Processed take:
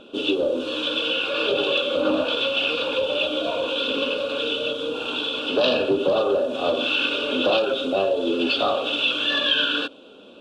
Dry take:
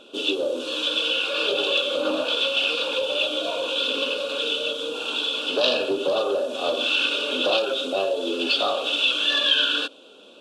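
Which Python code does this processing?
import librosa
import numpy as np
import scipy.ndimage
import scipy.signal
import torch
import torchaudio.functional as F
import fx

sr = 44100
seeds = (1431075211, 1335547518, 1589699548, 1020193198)

y = fx.bass_treble(x, sr, bass_db=10, treble_db=-11)
y = y * librosa.db_to_amplitude(2.0)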